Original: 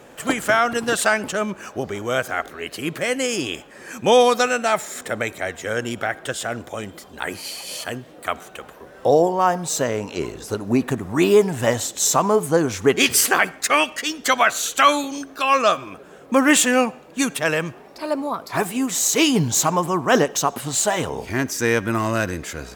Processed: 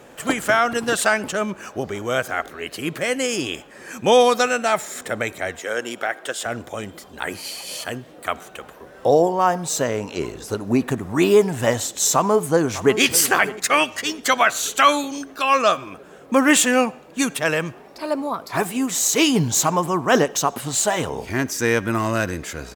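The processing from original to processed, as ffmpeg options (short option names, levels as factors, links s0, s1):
-filter_complex "[0:a]asettb=1/sr,asplit=3[s0][s1][s2];[s0]atrim=end=5.594[s3];[s1]atrim=start=5.59:end=6.46,asetpts=PTS-STARTPTS,afade=t=in:d=0.004:c=qsin,afade=t=out:st=0.866:d=0.004:c=qsin,highpass=320[s4];[s2]atrim=start=6.456[s5];[s3][s4]acrossfade=d=0.004:c1=hsin:c2=qsin[s6];[s6][s5]acrossfade=d=0.004:c1=qsin:c2=hsin,asplit=2[s7][s8];[s8]afade=t=in:st=12.13:d=0.01,afade=t=out:st=12.99:d=0.01,aecho=0:1:600|1200|1800|2400:0.177828|0.0800226|0.0360102|0.0162046[s9];[s7][s9]amix=inputs=2:normalize=0"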